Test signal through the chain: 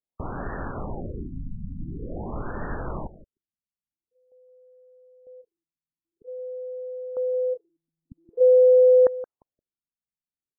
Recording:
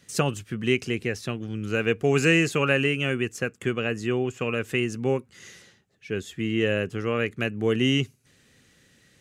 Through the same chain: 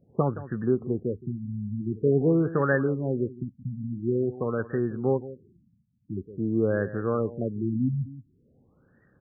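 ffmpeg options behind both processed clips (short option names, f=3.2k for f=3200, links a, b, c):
-af "aecho=1:1:172:0.168,afftfilt=real='re*lt(b*sr/1024,250*pow(1900/250,0.5+0.5*sin(2*PI*0.47*pts/sr)))':imag='im*lt(b*sr/1024,250*pow(1900/250,0.5+0.5*sin(2*PI*0.47*pts/sr)))':win_size=1024:overlap=0.75"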